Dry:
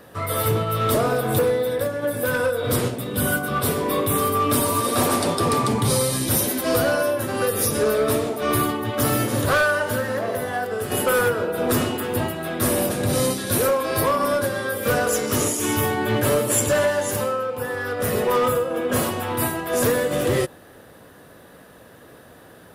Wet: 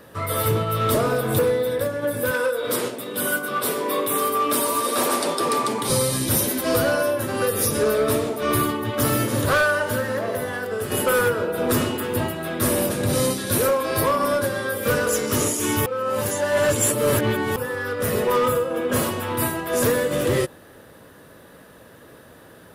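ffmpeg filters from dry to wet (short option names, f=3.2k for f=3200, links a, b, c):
-filter_complex "[0:a]asettb=1/sr,asplit=3[a][b][c];[a]atrim=end=2.314[d];[b]atrim=start=2.31:end=5.9,asetpts=PTS-STARTPTS,afade=t=in:d=0.004:c=qsin,afade=t=out:st=3.586:d=0.004:c=qsin,highpass=310[e];[c]atrim=start=5.896[f];[d][e]acrossfade=d=0.004:c1=hsin:c2=qsin[g];[g][f]acrossfade=d=0.004:c1=qsin:c2=hsin,asplit=3[h][i][j];[h]atrim=end=15.862[k];[i]atrim=start=15.858:end=17.562,asetpts=PTS-STARTPTS,areverse[l];[j]atrim=start=17.558[m];[k][l]acrossfade=d=0.004:c1=hsin:c2=hsin[n];[n][m]acrossfade=d=0.004:c1=hsin:c2=hsin,bandreject=f=730:w=12"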